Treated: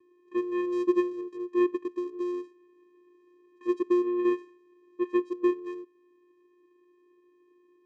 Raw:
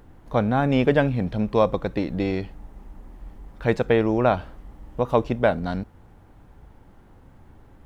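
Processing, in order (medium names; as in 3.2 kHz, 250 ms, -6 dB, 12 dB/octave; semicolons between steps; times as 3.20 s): vocoder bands 4, square 355 Hz; trim -5.5 dB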